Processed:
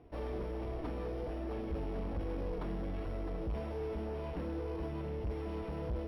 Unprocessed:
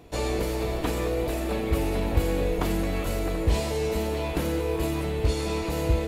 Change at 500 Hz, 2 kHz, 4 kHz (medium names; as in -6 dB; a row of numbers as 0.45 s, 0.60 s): -12.5 dB, -17.5 dB, -21.5 dB